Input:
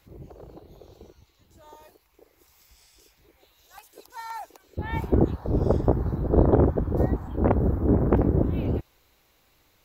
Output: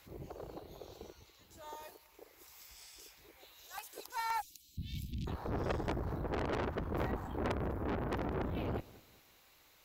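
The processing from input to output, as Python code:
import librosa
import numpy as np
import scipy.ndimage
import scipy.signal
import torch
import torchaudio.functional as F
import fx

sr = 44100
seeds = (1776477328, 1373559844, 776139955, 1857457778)

p1 = fx.tube_stage(x, sr, drive_db=28.0, bias=0.45)
p2 = fx.low_shelf(p1, sr, hz=420.0, db=-9.5)
p3 = p2 + fx.echo_feedback(p2, sr, ms=198, feedback_pct=36, wet_db=-21.0, dry=0)
p4 = fx.rider(p3, sr, range_db=3, speed_s=0.5)
p5 = fx.cheby2_bandstop(p4, sr, low_hz=460.0, high_hz=1600.0, order=4, stop_db=50, at=(4.4, 5.26), fade=0.02)
y = p5 * librosa.db_to_amplitude(2.0)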